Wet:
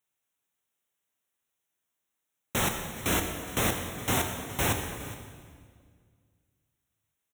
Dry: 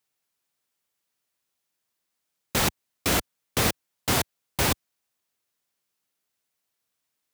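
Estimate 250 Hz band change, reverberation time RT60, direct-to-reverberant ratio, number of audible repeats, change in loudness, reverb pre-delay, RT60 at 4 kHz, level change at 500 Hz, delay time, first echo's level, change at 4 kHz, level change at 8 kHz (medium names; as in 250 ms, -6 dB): -1.5 dB, 1.9 s, 3.5 dB, 1, -3.0 dB, 13 ms, 1.6 s, -2.5 dB, 416 ms, -17.0 dB, -5.5 dB, -3.0 dB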